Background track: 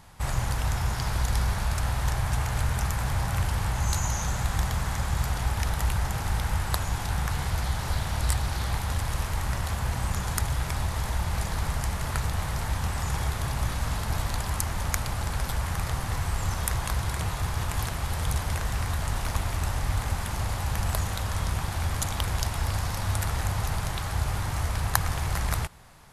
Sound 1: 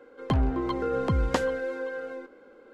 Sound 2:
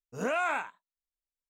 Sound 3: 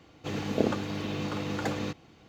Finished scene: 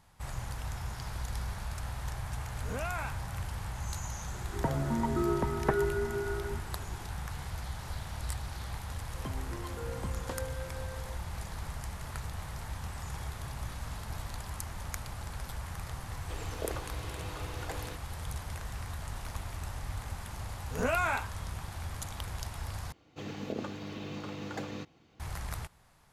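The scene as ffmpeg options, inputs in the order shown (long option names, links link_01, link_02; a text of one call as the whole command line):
ffmpeg -i bed.wav -i cue0.wav -i cue1.wav -i cue2.wav -filter_complex "[2:a]asplit=2[link_01][link_02];[1:a]asplit=2[link_03][link_04];[3:a]asplit=2[link_05][link_06];[0:a]volume=-11dB[link_07];[link_03]highpass=frequency=220:width_type=q:width=0.5412,highpass=frequency=220:width_type=q:width=1.307,lowpass=frequency=2200:width_type=q:width=0.5176,lowpass=frequency=2200:width_type=q:width=0.7071,lowpass=frequency=2200:width_type=q:width=1.932,afreqshift=-120[link_08];[link_04]asplit=2[link_09][link_10];[link_10]adelay=21,volume=-11dB[link_11];[link_09][link_11]amix=inputs=2:normalize=0[link_12];[link_05]highpass=frequency=360:width=0.5412,highpass=frequency=360:width=1.3066[link_13];[link_02]asplit=2[link_14][link_15];[link_15]adelay=12,volume=-4dB[link_16];[link_14][link_16]amix=inputs=2:normalize=0[link_17];[link_06]alimiter=limit=-15dB:level=0:latency=1:release=94[link_18];[link_07]asplit=2[link_19][link_20];[link_19]atrim=end=22.924[link_21];[link_18]atrim=end=2.28,asetpts=PTS-STARTPTS,volume=-7.5dB[link_22];[link_20]atrim=start=25.196[link_23];[link_01]atrim=end=1.49,asetpts=PTS-STARTPTS,volume=-8dB,afade=type=in:duration=0.004:curve=hsin,afade=type=out:start_time=1.486:duration=0.004:curve=hsin,adelay=2490[link_24];[link_08]atrim=end=2.73,asetpts=PTS-STARTPTS,volume=-1.5dB,afade=type=in:duration=0.004:curve=hsin,afade=type=out:start_time=2.726:duration=0.004:curve=hsin,adelay=4340[link_25];[link_12]atrim=end=2.73,asetpts=PTS-STARTPTS,volume=-15dB,afade=type=in:duration=0.004:curve=hsin,afade=type=out:start_time=2.726:duration=0.004:curve=hsin,adelay=8950[link_26];[link_13]atrim=end=2.28,asetpts=PTS-STARTPTS,volume=-8.5dB,afade=type=in:duration=0.004:curve=hsin,afade=type=out:start_time=2.276:duration=0.004:curve=hsin,adelay=707364S[link_27];[link_17]atrim=end=1.49,asetpts=PTS-STARTPTS,volume=-1.5dB,afade=type=in:duration=0.004:curve=hsin,afade=type=out:start_time=1.486:duration=0.004:curve=hsin,adelay=20580[link_28];[link_21][link_22]acrossfade=duration=0.004:curve1=hsin:curve2=hsin[link_29];[link_29][link_23]acrossfade=duration=0.004:curve1=hsin:curve2=hsin[link_30];[link_30][link_24][link_25][link_26][link_27][link_28]amix=inputs=6:normalize=0" out.wav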